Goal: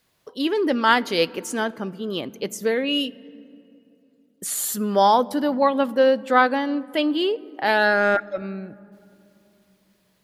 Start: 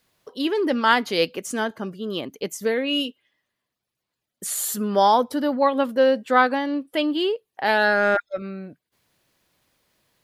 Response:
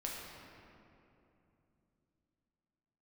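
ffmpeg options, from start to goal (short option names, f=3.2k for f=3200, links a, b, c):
-filter_complex "[0:a]asplit=2[a][b];[1:a]atrim=start_sample=2205,lowshelf=f=340:g=10[c];[b][c]afir=irnorm=-1:irlink=0,volume=-21.5dB[d];[a][d]amix=inputs=2:normalize=0"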